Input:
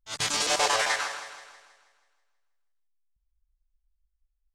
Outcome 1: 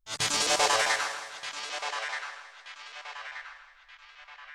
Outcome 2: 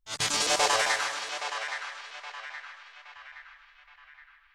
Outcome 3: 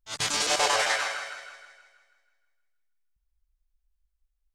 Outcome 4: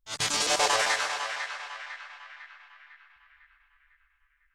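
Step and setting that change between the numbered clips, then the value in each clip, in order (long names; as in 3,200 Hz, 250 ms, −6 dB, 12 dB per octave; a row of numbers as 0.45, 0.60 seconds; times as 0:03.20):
feedback echo with a band-pass in the loop, delay time: 1,228, 820, 159, 501 milliseconds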